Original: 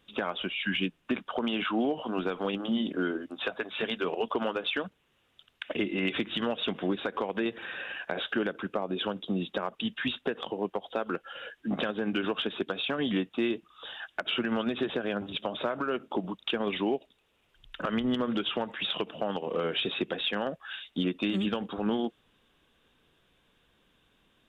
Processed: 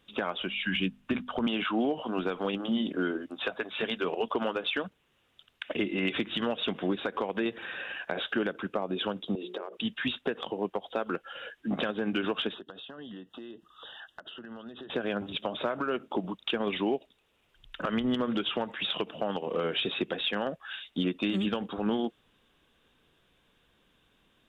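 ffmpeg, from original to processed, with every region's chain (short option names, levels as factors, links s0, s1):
-filter_complex "[0:a]asettb=1/sr,asplit=3[s0][s1][s2];[s0]atrim=end=0.424[s3];[s1]atrim=start=0.42:end=1.47,asetpts=PTS-STARTPTS,afade=t=in:d=0.004:c=qsin,afade=t=out:st=1.046:d=0.004:c=qsin,asubboost=boost=9.5:cutoff=220,bandreject=f=50:t=h:w=6,bandreject=f=100:t=h:w=6,bandreject=f=150:t=h:w=6,bandreject=f=200:t=h:w=6,bandreject=f=250:t=h:w=6[s4];[s2]atrim=start=1.466[s5];[s3][s4]acrossfade=d=0.004:c1=hsin:c2=qsin[s6];[s6][s5]acrossfade=d=0.004:c1=qsin:c2=hsin,asettb=1/sr,asplit=3[s7][s8][s9];[s7]atrim=end=9.354[s10];[s8]atrim=start=9.35:end=9.77,asetpts=PTS-STARTPTS,afade=t=in:d=0.004:c=qsin,afade=t=out:st=0.416:d=0.004:c=qsin,bandreject=f=60:t=h:w=6,bandreject=f=120:t=h:w=6,bandreject=f=180:t=h:w=6,bandreject=f=240:t=h:w=6,bandreject=f=300:t=h:w=6,bandreject=f=360:t=h:w=6,bandreject=f=420:t=h:w=6,bandreject=f=480:t=h:w=6,bandreject=f=540:t=h:w=6,bandreject=f=600:t=h:w=6,acompressor=threshold=0.0141:ratio=6:attack=3.2:release=140:knee=1:detection=peak,highpass=f=390:t=q:w=3.3[s11];[s9]atrim=start=9.766[s12];[s10][s11]acrossfade=d=0.004:c1=hsin:c2=qsin[s13];[s13][s12]acrossfade=d=0.004:c1=qsin:c2=hsin,asettb=1/sr,asplit=3[s14][s15][s16];[s14]atrim=end=12.544[s17];[s15]atrim=start=12.54:end=14.9,asetpts=PTS-STARTPTS,afade=t=in:d=0.004:c=qsin,afade=t=out:st=2.356:d=0.004:c=qsin,acompressor=threshold=0.00794:ratio=5:attack=3.2:release=140:knee=1:detection=peak,asuperstop=centerf=2300:order=4:qfactor=2.8[s18];[s16]atrim=start=14.896[s19];[s17][s18]acrossfade=d=0.004:c1=hsin:c2=qsin[s20];[s20][s19]acrossfade=d=0.004:c1=qsin:c2=hsin"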